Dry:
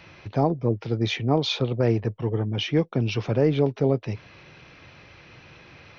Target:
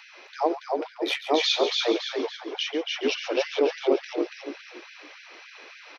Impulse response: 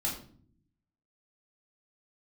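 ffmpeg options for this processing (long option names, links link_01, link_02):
-filter_complex "[0:a]bass=frequency=250:gain=-6,treble=frequency=4000:gain=4,asplit=2[link_01][link_02];[link_02]asplit=5[link_03][link_04][link_05][link_06][link_07];[link_03]adelay=282,afreqshift=-62,volume=-3dB[link_08];[link_04]adelay=564,afreqshift=-124,volume=-10.5dB[link_09];[link_05]adelay=846,afreqshift=-186,volume=-18.1dB[link_10];[link_06]adelay=1128,afreqshift=-248,volume=-25.6dB[link_11];[link_07]adelay=1410,afreqshift=-310,volume=-33.1dB[link_12];[link_08][link_09][link_10][link_11][link_12]amix=inputs=5:normalize=0[link_13];[link_01][link_13]amix=inputs=2:normalize=0,asettb=1/sr,asplit=3[link_14][link_15][link_16];[link_14]atrim=end=0.744[link_17];[link_15]atrim=start=0.74:end=1.3,asetpts=PTS-STARTPTS,afade=type=in:duration=0.004:curve=qsin,afade=type=out:start_time=0.556:duration=0.004:curve=qsin,adynamicsmooth=sensitivity=1.5:basefreq=3400[link_18];[link_16]atrim=start=1.296[link_19];[link_17][link_18]acrossfade=duration=0.004:curve1=hsin:curve2=qsin[link_20];[link_20][link_19]acrossfade=duration=0.004:curve1=qsin:curve2=hsin,asplit=2[link_21][link_22];[link_22]aecho=0:1:139|278|417|556:0.251|0.105|0.0443|0.0186[link_23];[link_21][link_23]amix=inputs=2:normalize=0,asplit=3[link_24][link_25][link_26];[link_24]afade=type=out:start_time=2.36:duration=0.02[link_27];[link_25]acompressor=threshold=-24dB:ratio=6,afade=type=in:start_time=2.36:duration=0.02,afade=type=out:start_time=2.9:duration=0.02[link_28];[link_26]afade=type=in:start_time=2.9:duration=0.02[link_29];[link_27][link_28][link_29]amix=inputs=3:normalize=0,afftfilt=real='re*gte(b*sr/1024,250*pow(1500/250,0.5+0.5*sin(2*PI*3.5*pts/sr)))':imag='im*gte(b*sr/1024,250*pow(1500/250,0.5+0.5*sin(2*PI*3.5*pts/sr)))':win_size=1024:overlap=0.75,volume=1.5dB"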